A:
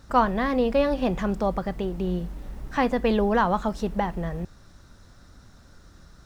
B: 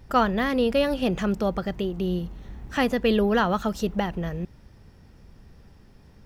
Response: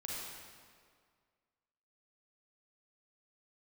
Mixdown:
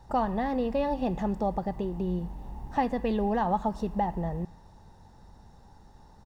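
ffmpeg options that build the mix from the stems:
-filter_complex "[0:a]aecho=1:1:1.1:0.43,volume=-10.5dB,asplit=2[link_01][link_02];[link_02]volume=-16dB[link_03];[1:a]acompressor=threshold=-27dB:ratio=6,lowpass=frequency=880:width_type=q:width=8.2,volume=-6dB[link_04];[2:a]atrim=start_sample=2205[link_05];[link_03][link_05]afir=irnorm=-1:irlink=0[link_06];[link_01][link_04][link_06]amix=inputs=3:normalize=0"

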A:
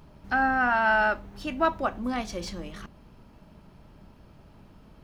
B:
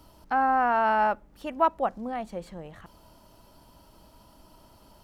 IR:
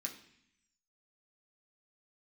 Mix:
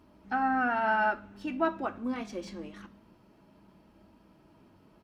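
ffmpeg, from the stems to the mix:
-filter_complex "[0:a]equalizer=frequency=100:width_type=o:width=0.28:gain=9,flanger=delay=2.9:depth=4.6:regen=-43:speed=0.74:shape=triangular,volume=-4dB,asplit=2[link_01][link_02];[link_02]volume=-3.5dB[link_03];[1:a]equalizer=frequency=330:width_type=o:width=0.64:gain=13.5,adelay=1.8,volume=-12dB[link_04];[2:a]atrim=start_sample=2205[link_05];[link_03][link_05]afir=irnorm=-1:irlink=0[link_06];[link_01][link_04][link_06]amix=inputs=3:normalize=0,highpass=48,highshelf=frequency=4900:gain=-10"

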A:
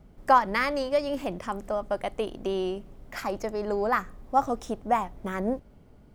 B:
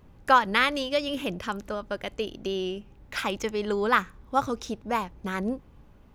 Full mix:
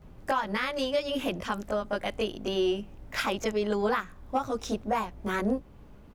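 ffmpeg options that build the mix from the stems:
ffmpeg -i stem1.wav -i stem2.wav -filter_complex "[0:a]asoftclip=type=tanh:threshold=-13.5dB,volume=-2.5dB[link_01];[1:a]alimiter=limit=-15dB:level=0:latency=1:release=159,adelay=19,volume=1.5dB[link_02];[link_01][link_02]amix=inputs=2:normalize=0,alimiter=limit=-17.5dB:level=0:latency=1:release=362" out.wav

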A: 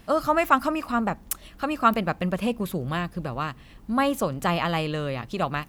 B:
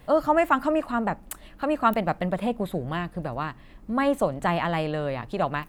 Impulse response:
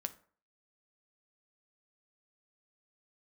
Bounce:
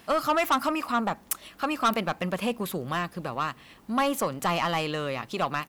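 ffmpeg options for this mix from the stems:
-filter_complex "[0:a]volume=3dB[link_01];[1:a]adelay=1.3,volume=-14.5dB[link_02];[link_01][link_02]amix=inputs=2:normalize=0,highpass=frequency=420:poles=1,asoftclip=type=tanh:threshold=-17.5dB"

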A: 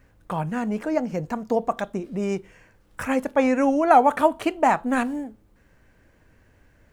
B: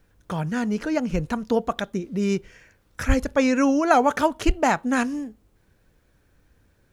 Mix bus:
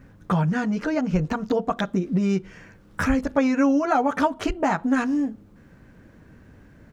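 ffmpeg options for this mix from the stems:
ffmpeg -i stem1.wav -i stem2.wav -filter_complex "[0:a]equalizer=frequency=190:width_type=o:width=2.4:gain=14.5,acompressor=threshold=-23dB:ratio=4,volume=-0.5dB[link_01];[1:a]acompressor=threshold=-23dB:ratio=6,lowpass=frequency=7000:width=0.5412,lowpass=frequency=7000:width=1.3066,adelay=11,volume=0dB[link_02];[link_01][link_02]amix=inputs=2:normalize=0,equalizer=frequency=1300:width_type=o:width=1:gain=4.5" out.wav

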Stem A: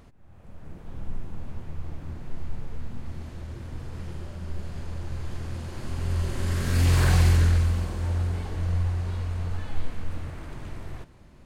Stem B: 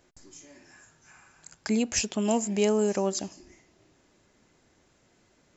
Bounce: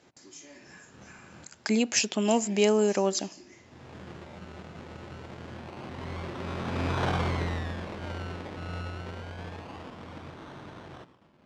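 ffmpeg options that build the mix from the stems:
ffmpeg -i stem1.wav -i stem2.wav -filter_complex "[0:a]agate=range=-33dB:threshold=-46dB:ratio=3:detection=peak,equalizer=frequency=950:width=1.5:gain=4,acrusher=samples=25:mix=1:aa=0.000001:lfo=1:lforange=15:lforate=0.26,volume=-1dB[link_01];[1:a]aemphasis=mode=production:type=75kf,volume=1.5dB,asplit=2[link_02][link_03];[link_03]apad=whole_len=505257[link_04];[link_01][link_04]sidechaincompress=threshold=-53dB:ratio=8:attack=47:release=329[link_05];[link_05][link_02]amix=inputs=2:normalize=0,highpass=170,lowpass=3800" out.wav

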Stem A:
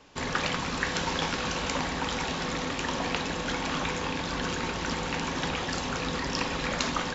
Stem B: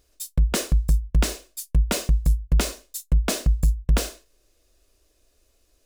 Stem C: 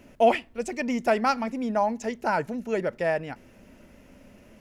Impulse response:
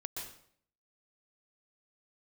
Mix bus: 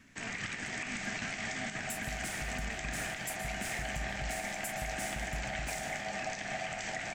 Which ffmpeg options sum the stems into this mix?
-filter_complex "[0:a]asubboost=boost=11.5:cutoff=89,aeval=exprs='val(0)*sin(2*PI*700*n/s)':channel_layout=same,volume=-5.5dB[link_01];[1:a]acompressor=threshold=-27dB:ratio=6,alimiter=level_in=0.5dB:limit=-24dB:level=0:latency=1:release=203,volume=-0.5dB,adelay=1700,volume=-9dB,asplit=2[link_02][link_03];[link_03]volume=-3.5dB[link_04];[2:a]acompressor=threshold=-36dB:ratio=2.5,volume=-13.5dB[link_05];[3:a]atrim=start_sample=2205[link_06];[link_04][link_06]afir=irnorm=-1:irlink=0[link_07];[link_01][link_02][link_05][link_07]amix=inputs=4:normalize=0,equalizer=frequency=125:width_type=o:width=1:gain=5,equalizer=frequency=250:width_type=o:width=1:gain=4,equalizer=frequency=500:width_type=o:width=1:gain=-10,equalizer=frequency=1000:width_type=o:width=1:gain=-8,equalizer=frequency=2000:width_type=o:width=1:gain=11,equalizer=frequency=4000:width_type=o:width=1:gain=-7,equalizer=frequency=8000:width_type=o:width=1:gain=8,alimiter=level_in=2dB:limit=-24dB:level=0:latency=1:release=86,volume=-2dB"

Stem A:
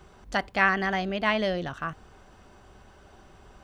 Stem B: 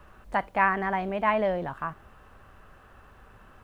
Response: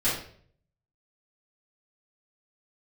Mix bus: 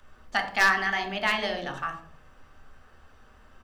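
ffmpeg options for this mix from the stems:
-filter_complex "[0:a]highpass=1200,aeval=exprs='0.168*(abs(mod(val(0)/0.168+3,4)-2)-1)':channel_layout=same,volume=1.5dB,asplit=2[link_01][link_02];[link_02]volume=-18dB[link_03];[1:a]bandreject=frequency=50:width_type=h:width=6,bandreject=frequency=100:width_type=h:width=6,bandreject=frequency=150:width_type=h:width=6,bandreject=frequency=200:width_type=h:width=6,adelay=2.4,volume=-12dB,asplit=3[link_04][link_05][link_06];[link_05]volume=-5.5dB[link_07];[link_06]apad=whole_len=160448[link_08];[link_01][link_08]sidechaingate=range=-33dB:threshold=-53dB:ratio=16:detection=peak[link_09];[2:a]atrim=start_sample=2205[link_10];[link_03][link_07]amix=inputs=2:normalize=0[link_11];[link_11][link_10]afir=irnorm=-1:irlink=0[link_12];[link_09][link_04][link_12]amix=inputs=3:normalize=0"

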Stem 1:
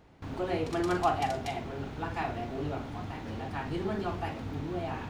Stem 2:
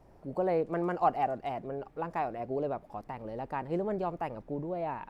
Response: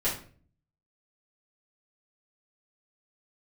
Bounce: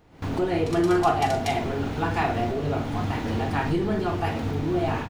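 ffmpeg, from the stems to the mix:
-filter_complex "[0:a]highshelf=frequency=7900:gain=4.5,volume=-1dB,asplit=2[link_01][link_02];[link_02]volume=-18.5dB[link_03];[1:a]lowshelf=frequency=430:width_type=q:width=3:gain=6.5,adelay=2.3,volume=-16.5dB,asplit=2[link_04][link_05];[link_05]apad=whole_len=224486[link_06];[link_01][link_06]sidechaincompress=threshold=-44dB:ratio=8:attack=16:release=895[link_07];[2:a]atrim=start_sample=2205[link_08];[link_03][link_08]afir=irnorm=-1:irlink=0[link_09];[link_07][link_04][link_09]amix=inputs=3:normalize=0,dynaudnorm=framelen=100:gausssize=3:maxgain=11dB"

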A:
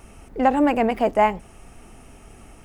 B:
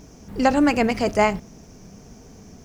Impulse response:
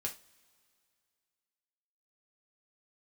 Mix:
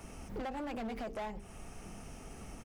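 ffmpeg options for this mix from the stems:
-filter_complex "[0:a]bandreject=frequency=50:width_type=h:width=6,bandreject=frequency=100:width_type=h:width=6,bandreject=frequency=150:width_type=h:width=6,bandreject=frequency=200:width_type=h:width=6,bandreject=frequency=250:width_type=h:width=6,bandreject=frequency=300:width_type=h:width=6,bandreject=frequency=350:width_type=h:width=6,bandreject=frequency=400:width_type=h:width=6,bandreject=frequency=450:width_type=h:width=6,acompressor=threshold=-23dB:ratio=2.5,volume=-3.5dB,asplit=2[link_01][link_02];[1:a]adelay=9.3,volume=-9dB[link_03];[link_02]apad=whole_len=116885[link_04];[link_03][link_04]sidechaincompress=threshold=-34dB:ratio=8:attack=16:release=621[link_05];[link_01][link_05]amix=inputs=2:normalize=0,acrossover=split=120[link_06][link_07];[link_07]acompressor=threshold=-37dB:ratio=2.5[link_08];[link_06][link_08]amix=inputs=2:normalize=0,asoftclip=type=hard:threshold=-36dB"

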